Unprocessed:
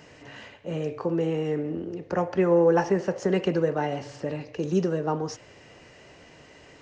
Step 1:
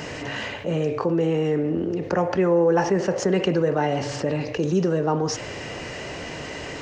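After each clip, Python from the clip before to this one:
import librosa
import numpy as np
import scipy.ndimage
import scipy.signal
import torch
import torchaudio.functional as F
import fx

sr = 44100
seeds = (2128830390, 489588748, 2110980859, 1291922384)

y = fx.env_flatten(x, sr, amount_pct=50)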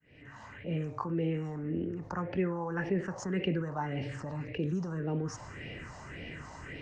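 y = fx.fade_in_head(x, sr, length_s=0.8)
y = fx.phaser_stages(y, sr, stages=4, low_hz=410.0, high_hz=1100.0, hz=1.8, feedback_pct=45)
y = fx.high_shelf(y, sr, hz=5000.0, db=-9.5)
y = F.gain(torch.from_numpy(y), -7.0).numpy()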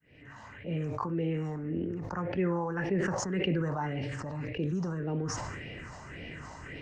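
y = fx.sustainer(x, sr, db_per_s=25.0)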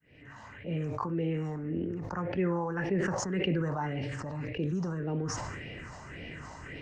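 y = x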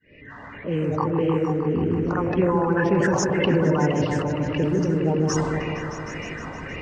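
y = fx.spec_quant(x, sr, step_db=30)
y = fx.env_lowpass(y, sr, base_hz=3000.0, full_db=-28.5)
y = fx.echo_opening(y, sr, ms=155, hz=750, octaves=1, feedback_pct=70, wet_db=-3)
y = F.gain(torch.from_numpy(y), 8.5).numpy()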